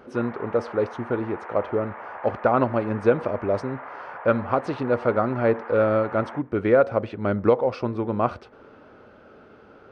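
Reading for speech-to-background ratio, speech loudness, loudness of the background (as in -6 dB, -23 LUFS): 15.0 dB, -24.0 LUFS, -39.0 LUFS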